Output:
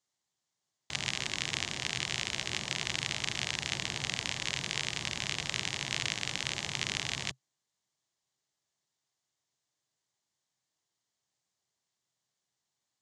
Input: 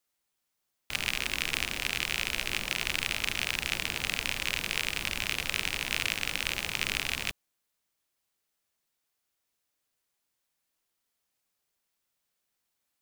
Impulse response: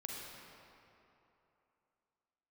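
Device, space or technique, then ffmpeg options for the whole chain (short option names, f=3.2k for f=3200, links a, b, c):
car door speaker: -af "highpass=92,equalizer=f=130:t=q:w=4:g=9,equalizer=f=260:t=q:w=4:g=-4,equalizer=f=500:t=q:w=4:g=-5,equalizer=f=1.4k:t=q:w=4:g=-7,equalizer=f=2.5k:t=q:w=4:g=-8,equalizer=f=6.9k:t=q:w=4:g=4,lowpass=f=7.5k:w=0.5412,lowpass=f=7.5k:w=1.3066"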